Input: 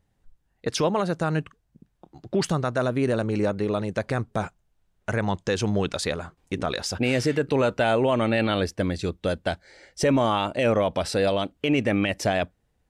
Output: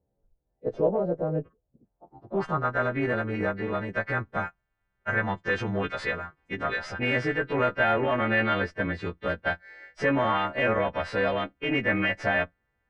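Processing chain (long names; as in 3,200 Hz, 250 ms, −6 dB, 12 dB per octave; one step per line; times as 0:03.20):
every partial snapped to a pitch grid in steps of 2 semitones
harmonic generator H 6 −25 dB, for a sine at −8.5 dBFS
low-pass filter sweep 540 Hz → 1,800 Hz, 0:01.73–0:02.84
level −4.5 dB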